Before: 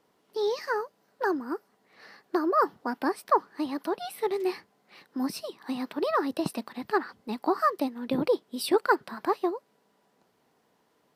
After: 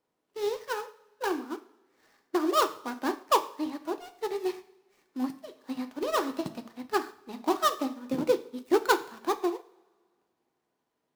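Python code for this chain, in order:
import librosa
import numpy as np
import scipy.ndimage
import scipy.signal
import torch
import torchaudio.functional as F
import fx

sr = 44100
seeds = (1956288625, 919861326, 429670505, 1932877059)

y = fx.dead_time(x, sr, dead_ms=0.14)
y = fx.rev_double_slope(y, sr, seeds[0], early_s=0.73, late_s=2.3, knee_db=-18, drr_db=5.0)
y = fx.upward_expand(y, sr, threshold_db=-43.0, expansion=1.5)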